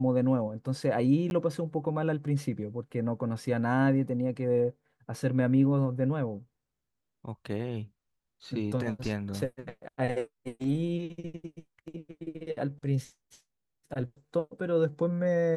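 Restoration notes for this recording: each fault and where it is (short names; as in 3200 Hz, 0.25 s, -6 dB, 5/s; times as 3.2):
1.3–1.31 gap 11 ms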